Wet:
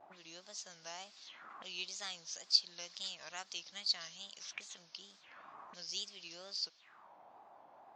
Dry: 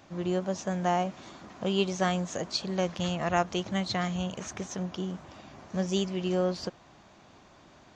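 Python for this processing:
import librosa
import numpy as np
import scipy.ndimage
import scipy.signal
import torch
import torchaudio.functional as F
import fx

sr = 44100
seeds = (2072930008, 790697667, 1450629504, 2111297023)

y = fx.wow_flutter(x, sr, seeds[0], rate_hz=2.1, depth_cents=150.0)
y = fx.auto_wah(y, sr, base_hz=640.0, top_hz=4800.0, q=3.9, full_db=-33.0, direction='up')
y = F.gain(torch.from_numpy(y), 4.5).numpy()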